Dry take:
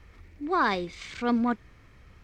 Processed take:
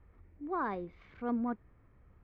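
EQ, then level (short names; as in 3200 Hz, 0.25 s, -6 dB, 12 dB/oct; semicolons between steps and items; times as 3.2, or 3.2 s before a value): LPF 1200 Hz 12 dB/oct; -8.0 dB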